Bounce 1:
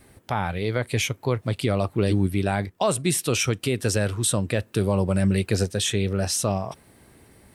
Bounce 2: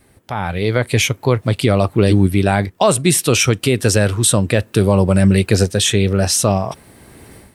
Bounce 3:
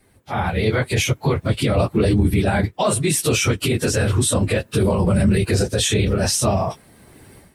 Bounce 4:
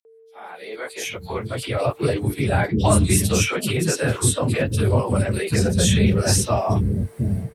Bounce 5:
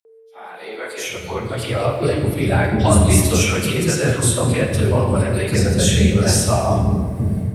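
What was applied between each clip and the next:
AGC gain up to 14 dB
phase scrambler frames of 50 ms; limiter -11.5 dBFS, peak gain reduction 11 dB; upward expander 1.5:1, over -32 dBFS; gain +3 dB
opening faded in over 2.00 s; whine 450 Hz -45 dBFS; three bands offset in time highs, mids, lows 50/770 ms, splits 330/3700 Hz
reverb RT60 1.7 s, pre-delay 25 ms, DRR 3.5 dB; gain +1.5 dB

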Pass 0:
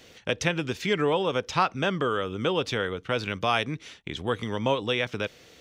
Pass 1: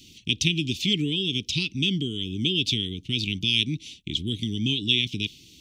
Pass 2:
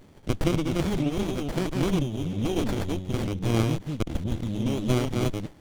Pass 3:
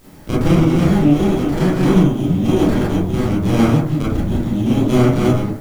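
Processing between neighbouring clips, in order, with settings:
inverse Chebyshev band-stop 520–1700 Hz, stop band 40 dB; dynamic EQ 3300 Hz, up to +7 dB, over -46 dBFS, Q 1.6; gain +4.5 dB
reverse delay 0.212 s, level -2.5 dB; running maximum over 33 samples
in parallel at -6 dB: requantised 8-bit, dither triangular; on the sum: reverb RT60 0.60 s, pre-delay 22 ms, DRR -9 dB; gain -3 dB

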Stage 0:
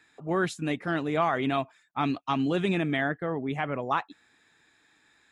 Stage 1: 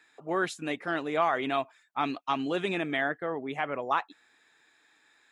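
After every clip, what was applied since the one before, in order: tone controls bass -13 dB, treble -1 dB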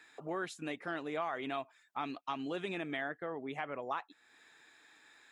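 compressor 2:1, threshold -47 dBFS, peak gain reduction 14 dB; gain +2.5 dB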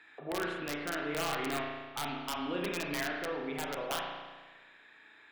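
resonant high shelf 4300 Hz -11 dB, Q 1.5; wrapped overs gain 27.5 dB; spring tank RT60 1.4 s, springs 34 ms, chirp 80 ms, DRR -1 dB

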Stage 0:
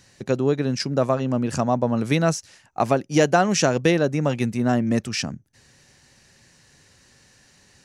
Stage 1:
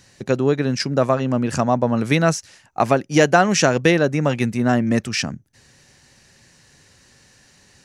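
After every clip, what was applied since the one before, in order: dynamic EQ 1800 Hz, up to +4 dB, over -39 dBFS, Q 1.1; gain +2.5 dB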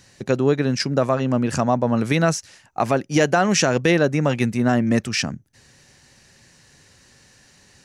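limiter -7 dBFS, peak gain reduction 5.5 dB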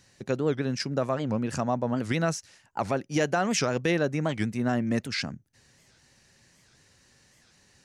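record warp 78 rpm, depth 250 cents; gain -8 dB

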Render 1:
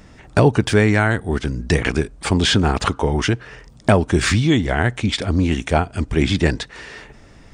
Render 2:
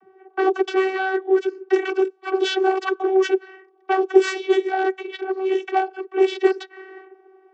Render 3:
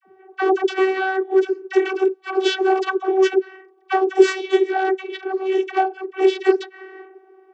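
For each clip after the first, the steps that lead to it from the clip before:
one-sided fold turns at -10 dBFS; vocoder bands 32, saw 380 Hz; low-pass opened by the level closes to 1100 Hz, open at -13.5 dBFS
dispersion lows, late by 48 ms, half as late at 770 Hz; gain +1.5 dB

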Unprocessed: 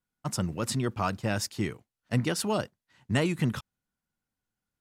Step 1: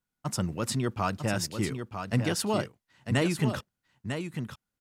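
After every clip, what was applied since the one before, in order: echo 0.949 s -7.5 dB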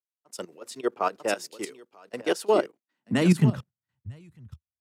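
level quantiser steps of 14 dB; high-pass sweep 420 Hz -> 78 Hz, 2.46–4.22; three-band expander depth 100%; gain +2.5 dB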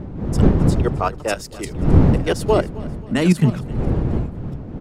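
wind noise 190 Hz -24 dBFS; feedback echo 0.265 s, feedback 45%, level -19.5 dB; gain +4.5 dB

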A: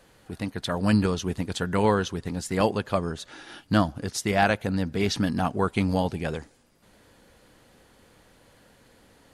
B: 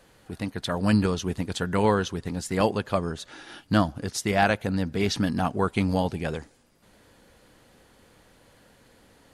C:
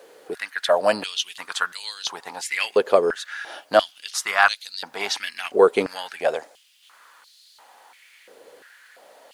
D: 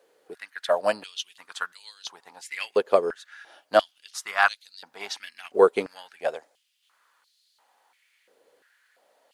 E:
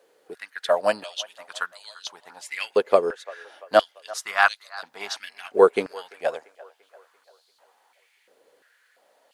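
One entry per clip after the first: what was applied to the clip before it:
nothing audible
added noise pink -66 dBFS; stepped high-pass 2.9 Hz 450–4200 Hz; gain +4 dB
upward expander 1.5:1, over -36 dBFS; gain -1.5 dB
band-limited delay 0.342 s, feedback 49%, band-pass 1100 Hz, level -19 dB; gain +2 dB

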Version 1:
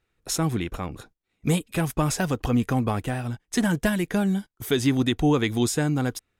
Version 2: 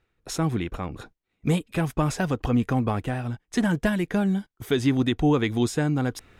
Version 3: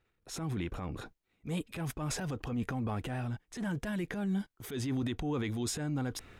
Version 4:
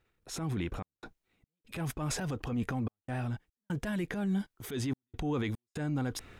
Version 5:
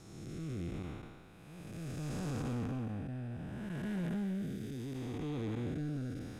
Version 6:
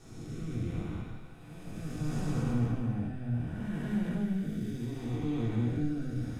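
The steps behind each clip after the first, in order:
high shelf 5700 Hz -11 dB; reverse; upward compressor, threshold -35 dBFS; reverse
limiter -20 dBFS, peak gain reduction 8.5 dB; transient shaper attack -8 dB, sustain +6 dB; gain -5.5 dB
step gate "xxxx.xx.xx" 73 bpm -60 dB; gain +1.5 dB
time blur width 0.6 s; soft clip -35 dBFS, distortion -17 dB; rotary speaker horn 0.7 Hz; gain +4 dB
shoebox room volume 240 m³, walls furnished, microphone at 3.5 m; gain -4 dB

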